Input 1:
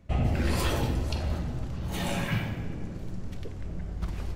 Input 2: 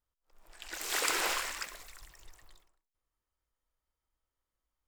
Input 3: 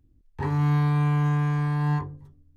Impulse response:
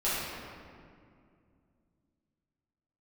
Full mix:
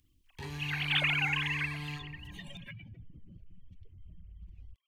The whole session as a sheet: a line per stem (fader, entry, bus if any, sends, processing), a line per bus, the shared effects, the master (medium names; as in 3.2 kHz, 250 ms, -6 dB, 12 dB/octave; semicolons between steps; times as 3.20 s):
-11.5 dB, 0.40 s, bus A, no send, spectral contrast enhancement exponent 2; reverb removal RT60 0.62 s; peak limiter -28.5 dBFS, peak gain reduction 9.5 dB
-1.0 dB, 0.00 s, no bus, no send, formants replaced by sine waves; compression, threshold -33 dBFS, peak gain reduction 7 dB
-10.0 dB, 0.00 s, bus A, send -22.5 dB, none
bus A: 0.0 dB, treble shelf 4 kHz +7 dB; compression 2:1, threshold -45 dBFS, peak gain reduction 9 dB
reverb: on, RT60 2.3 s, pre-delay 5 ms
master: resonant high shelf 1.9 kHz +13 dB, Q 1.5